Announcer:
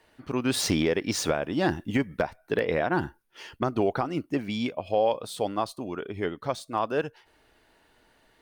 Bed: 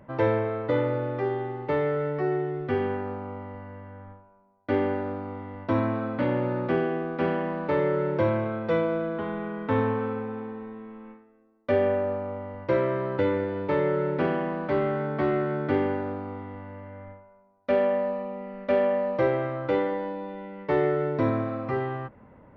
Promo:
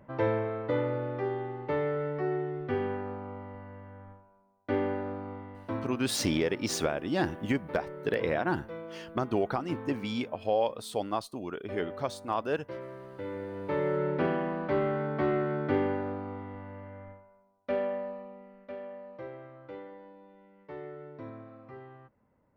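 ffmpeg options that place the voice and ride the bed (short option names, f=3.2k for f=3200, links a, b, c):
-filter_complex "[0:a]adelay=5550,volume=-3.5dB[a];[1:a]volume=9.5dB,afade=t=out:st=5.32:d=0.67:silence=0.237137,afade=t=in:st=13.16:d=0.88:silence=0.199526,afade=t=out:st=16.84:d=1.92:silence=0.158489[b];[a][b]amix=inputs=2:normalize=0"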